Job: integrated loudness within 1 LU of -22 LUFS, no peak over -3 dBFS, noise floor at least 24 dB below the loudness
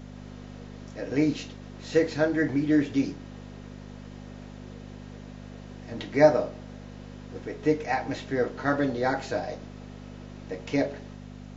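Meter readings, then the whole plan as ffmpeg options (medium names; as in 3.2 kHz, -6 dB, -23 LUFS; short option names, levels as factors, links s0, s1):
hum 50 Hz; highest harmonic 250 Hz; hum level -40 dBFS; loudness -27.0 LUFS; peak level -6.5 dBFS; loudness target -22.0 LUFS
-> -af "bandreject=f=50:t=h:w=4,bandreject=f=100:t=h:w=4,bandreject=f=150:t=h:w=4,bandreject=f=200:t=h:w=4,bandreject=f=250:t=h:w=4"
-af "volume=1.78,alimiter=limit=0.708:level=0:latency=1"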